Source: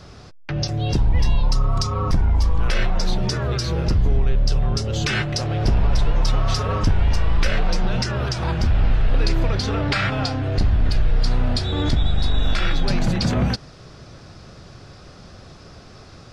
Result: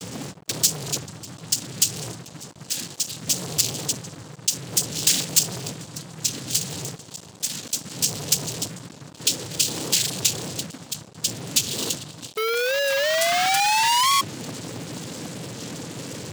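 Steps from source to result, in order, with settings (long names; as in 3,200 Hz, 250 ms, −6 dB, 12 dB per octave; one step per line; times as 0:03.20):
adaptive Wiener filter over 41 samples
in parallel at −10.5 dB: fuzz pedal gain 46 dB, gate −55 dBFS
on the sum: tape delay 445 ms, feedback 82%, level −16 dB, low-pass 2,400 Hz
on a send at −8 dB: convolution reverb RT60 0.30 s, pre-delay 4 ms
on the sum: downward compressor 20 to 1, threshold −20 dBFS, peak gain reduction 17.5 dB
Chebyshev band-stop filter 270–4,400 Hz, order 2
notch comb filter 180 Hz
cochlear-implant simulation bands 8
sound drawn into the spectrogram rise, 0:12.37–0:14.22, 430–1,100 Hz −19 dBFS
leveller curve on the samples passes 5
spectral tilt +4.5 dB per octave
wow of a warped record 45 rpm, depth 100 cents
level −9.5 dB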